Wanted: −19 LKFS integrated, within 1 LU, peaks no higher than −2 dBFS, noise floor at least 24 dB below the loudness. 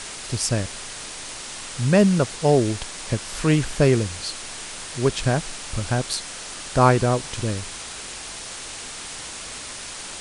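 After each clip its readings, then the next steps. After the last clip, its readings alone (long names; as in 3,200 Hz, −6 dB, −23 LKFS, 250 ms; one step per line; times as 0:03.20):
background noise floor −36 dBFS; target noise floor −48 dBFS; integrated loudness −24.0 LKFS; sample peak −3.5 dBFS; target loudness −19.0 LKFS
→ noise reduction from a noise print 12 dB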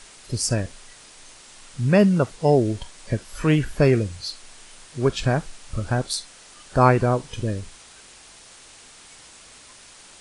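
background noise floor −48 dBFS; integrated loudness −22.5 LKFS; sample peak −3.5 dBFS; target loudness −19.0 LKFS
→ level +3.5 dB
brickwall limiter −2 dBFS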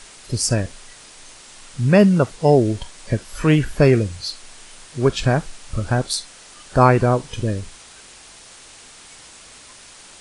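integrated loudness −19.0 LKFS; sample peak −2.0 dBFS; background noise floor −44 dBFS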